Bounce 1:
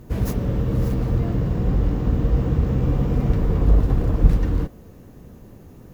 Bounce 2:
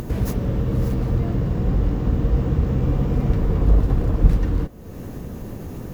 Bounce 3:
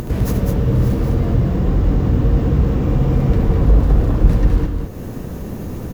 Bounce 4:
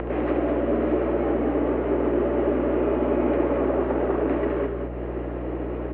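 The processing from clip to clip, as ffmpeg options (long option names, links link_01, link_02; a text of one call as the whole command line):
ffmpeg -i in.wav -af "acompressor=mode=upward:threshold=-20dB:ratio=2.5" out.wav
ffmpeg -i in.wav -af "aecho=1:1:72.89|204.1:0.316|0.562,asoftclip=type=tanh:threshold=-4dB,volume=4dB" out.wav
ffmpeg -i in.wav -af "highpass=frequency=190:width_type=q:width=0.5412,highpass=frequency=190:width_type=q:width=1.307,lowpass=frequency=2600:width_type=q:width=0.5176,lowpass=frequency=2600:width_type=q:width=0.7071,lowpass=frequency=2600:width_type=q:width=1.932,afreqshift=110,aeval=exprs='val(0)+0.0251*(sin(2*PI*60*n/s)+sin(2*PI*2*60*n/s)/2+sin(2*PI*3*60*n/s)/3+sin(2*PI*4*60*n/s)/4+sin(2*PI*5*60*n/s)/5)':channel_layout=same" out.wav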